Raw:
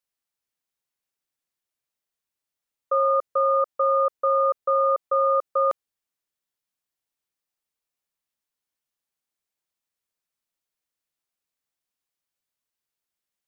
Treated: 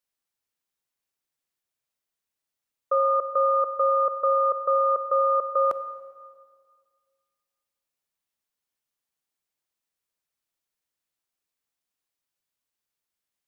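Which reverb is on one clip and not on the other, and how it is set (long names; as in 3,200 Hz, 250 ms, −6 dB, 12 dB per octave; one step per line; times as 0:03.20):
dense smooth reverb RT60 1.9 s, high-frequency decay 0.8×, pre-delay 0 ms, DRR 12.5 dB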